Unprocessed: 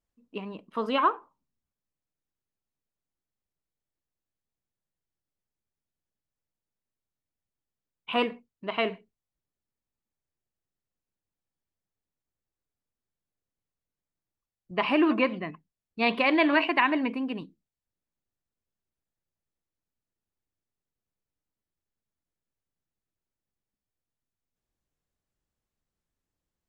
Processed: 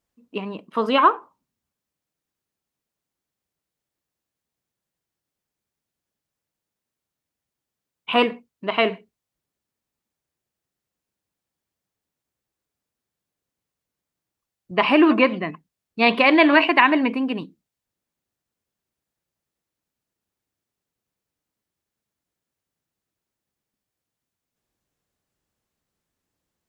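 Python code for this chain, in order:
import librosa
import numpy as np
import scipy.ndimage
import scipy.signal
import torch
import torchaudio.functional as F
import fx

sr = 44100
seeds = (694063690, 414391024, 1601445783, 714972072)

y = fx.highpass(x, sr, hz=110.0, slope=6)
y = y * 10.0 ** (8.0 / 20.0)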